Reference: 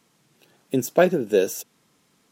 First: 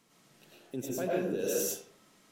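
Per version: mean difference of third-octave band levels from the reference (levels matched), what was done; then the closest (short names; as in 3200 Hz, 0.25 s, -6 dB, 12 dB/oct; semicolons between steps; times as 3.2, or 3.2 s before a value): 9.5 dB: reverse; compressor 16:1, threshold -28 dBFS, peak gain reduction 18 dB; reverse; digital reverb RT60 0.59 s, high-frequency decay 0.7×, pre-delay 65 ms, DRR -5.5 dB; gain -4.5 dB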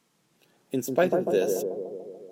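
5.0 dB: bell 94 Hz -7 dB 0.68 oct; analogue delay 0.145 s, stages 1024, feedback 65%, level -4 dB; gain -5.5 dB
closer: second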